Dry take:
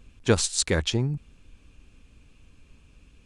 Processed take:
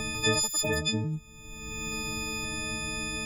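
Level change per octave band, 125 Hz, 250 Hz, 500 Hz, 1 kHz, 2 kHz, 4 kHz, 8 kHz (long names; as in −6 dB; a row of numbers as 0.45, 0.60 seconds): −5.0, −3.0, −4.5, +2.0, +4.0, +1.0, 0.0 decibels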